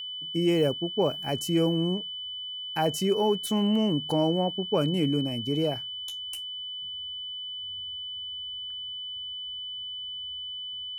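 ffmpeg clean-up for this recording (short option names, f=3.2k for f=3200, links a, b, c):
-af "bandreject=f=3k:w=30"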